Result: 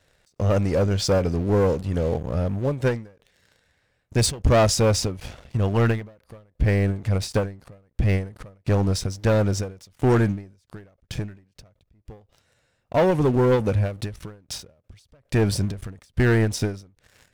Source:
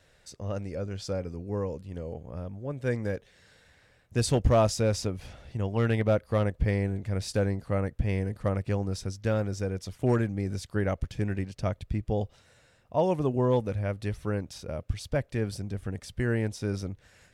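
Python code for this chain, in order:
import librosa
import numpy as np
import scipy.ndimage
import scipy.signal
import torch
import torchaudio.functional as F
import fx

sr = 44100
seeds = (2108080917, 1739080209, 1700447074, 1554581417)

y = fx.rider(x, sr, range_db=4, speed_s=2.0)
y = fx.leveller(y, sr, passes=3)
y = fx.end_taper(y, sr, db_per_s=140.0)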